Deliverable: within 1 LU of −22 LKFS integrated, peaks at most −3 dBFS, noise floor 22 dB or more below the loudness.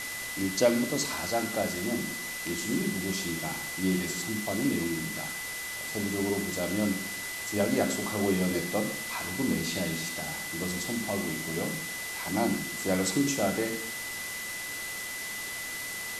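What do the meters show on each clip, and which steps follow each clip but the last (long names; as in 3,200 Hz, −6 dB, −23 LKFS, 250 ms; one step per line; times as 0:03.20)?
interfering tone 2,000 Hz; level of the tone −37 dBFS; background noise floor −37 dBFS; target noise floor −53 dBFS; integrated loudness −30.5 LKFS; sample peak −10.0 dBFS; target loudness −22.0 LKFS
→ notch filter 2,000 Hz, Q 30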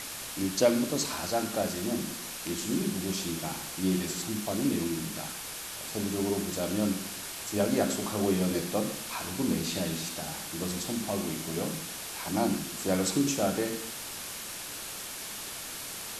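interfering tone none found; background noise floor −40 dBFS; target noise floor −53 dBFS
→ broadband denoise 13 dB, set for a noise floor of −40 dBFS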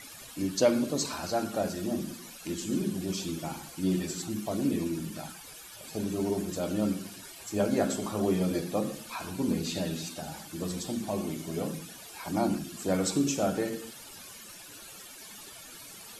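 background noise floor −47 dBFS; target noise floor −54 dBFS
→ broadband denoise 7 dB, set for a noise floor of −47 dBFS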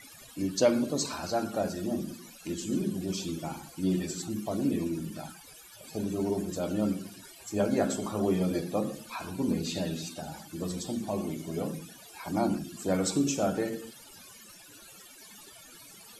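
background noise floor −51 dBFS; target noise floor −54 dBFS
→ broadband denoise 6 dB, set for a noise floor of −51 dBFS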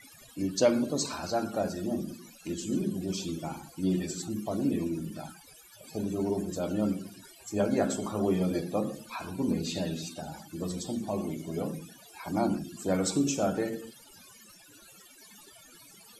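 background noise floor −54 dBFS; integrated loudness −31.5 LKFS; sample peak −11.0 dBFS; target loudness −22.0 LKFS
→ level +9.5 dB
brickwall limiter −3 dBFS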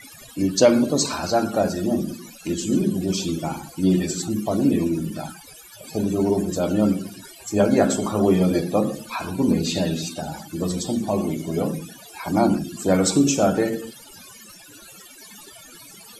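integrated loudness −22.0 LKFS; sample peak −3.0 dBFS; background noise floor −45 dBFS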